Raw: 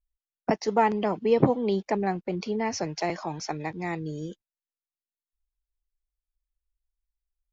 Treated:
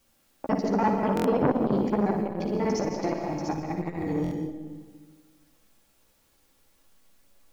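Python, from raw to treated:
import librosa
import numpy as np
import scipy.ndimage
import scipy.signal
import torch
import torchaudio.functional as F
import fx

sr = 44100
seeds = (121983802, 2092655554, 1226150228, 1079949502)

p1 = fx.local_reverse(x, sr, ms=49.0)
p2 = fx.dmg_noise_colour(p1, sr, seeds[0], colour='white', level_db=-63.0)
p3 = fx.chorus_voices(p2, sr, voices=2, hz=0.27, base_ms=13, depth_ms=2.5, mix_pct=35)
p4 = fx.level_steps(p3, sr, step_db=19)
p5 = p3 + (p4 * librosa.db_to_amplitude(-1.5))
p6 = fx.tilt_shelf(p5, sr, db=6.0, hz=670.0)
p7 = p6 + 0.32 * np.pad(p6, (int(3.6 * sr / 1000.0), 0))[:len(p6)]
p8 = fx.room_flutter(p7, sr, wall_m=9.9, rt60_s=0.42)
p9 = fx.rev_freeverb(p8, sr, rt60_s=1.5, hf_ratio=0.7, predelay_ms=105, drr_db=3.5)
p10 = fx.buffer_glitch(p9, sr, at_s=(1.15, 4.22), block=1024, repeats=3)
y = fx.transformer_sat(p10, sr, knee_hz=740.0)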